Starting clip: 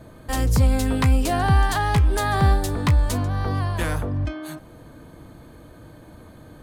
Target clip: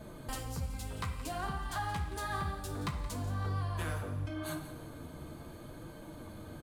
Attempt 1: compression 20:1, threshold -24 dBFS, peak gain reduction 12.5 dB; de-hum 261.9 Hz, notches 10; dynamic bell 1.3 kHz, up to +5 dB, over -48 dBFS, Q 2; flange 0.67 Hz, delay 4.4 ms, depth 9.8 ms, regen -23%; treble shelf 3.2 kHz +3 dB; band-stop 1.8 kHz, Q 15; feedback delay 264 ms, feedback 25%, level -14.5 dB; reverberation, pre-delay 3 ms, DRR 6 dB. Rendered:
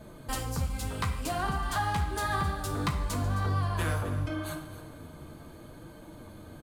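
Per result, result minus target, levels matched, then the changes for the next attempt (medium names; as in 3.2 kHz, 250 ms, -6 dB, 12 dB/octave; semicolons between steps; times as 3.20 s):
echo 90 ms late; compression: peak gain reduction -6.5 dB
change: feedback delay 174 ms, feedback 25%, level -14.5 dB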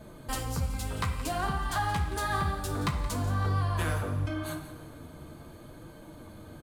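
compression: peak gain reduction -6.5 dB
change: compression 20:1, threshold -31 dBFS, peak gain reduction 19 dB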